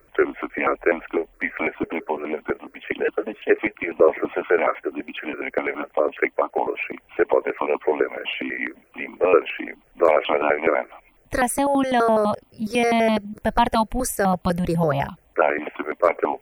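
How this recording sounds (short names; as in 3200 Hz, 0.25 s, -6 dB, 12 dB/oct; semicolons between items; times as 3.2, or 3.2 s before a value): notches that jump at a steady rate 12 Hz 830–1700 Hz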